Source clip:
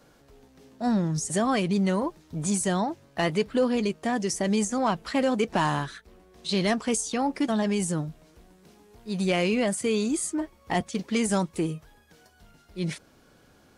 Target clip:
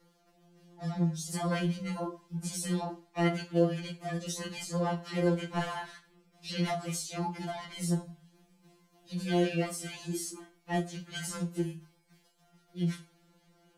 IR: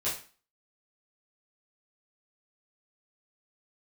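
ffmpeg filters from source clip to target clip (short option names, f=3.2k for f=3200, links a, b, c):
-filter_complex "[0:a]asplit=3[a][b][c];[b]asetrate=29433,aresample=44100,atempo=1.49831,volume=-5dB[d];[c]asetrate=58866,aresample=44100,atempo=0.749154,volume=-10dB[e];[a][d][e]amix=inputs=3:normalize=0,asplit=2[f][g];[1:a]atrim=start_sample=2205[h];[g][h]afir=irnorm=-1:irlink=0,volume=-11.5dB[i];[f][i]amix=inputs=2:normalize=0,afftfilt=real='re*2.83*eq(mod(b,8),0)':imag='im*2.83*eq(mod(b,8),0)':win_size=2048:overlap=0.75,volume=-8.5dB"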